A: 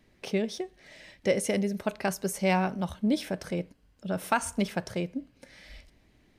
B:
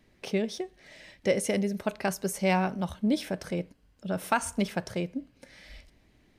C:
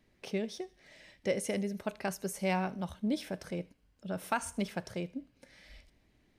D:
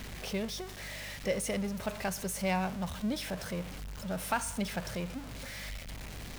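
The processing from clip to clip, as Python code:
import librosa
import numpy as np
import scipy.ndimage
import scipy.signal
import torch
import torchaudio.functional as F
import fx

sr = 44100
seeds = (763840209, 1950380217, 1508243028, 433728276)

y1 = x
y2 = fx.echo_wet_highpass(y1, sr, ms=77, feedback_pct=34, hz=2100.0, wet_db=-19.5)
y2 = y2 * librosa.db_to_amplitude(-6.0)
y3 = y2 + 0.5 * 10.0 ** (-38.0 / 20.0) * np.sign(y2)
y3 = fx.add_hum(y3, sr, base_hz=50, snr_db=13)
y3 = fx.peak_eq(y3, sr, hz=330.0, db=-7.0, octaves=0.69)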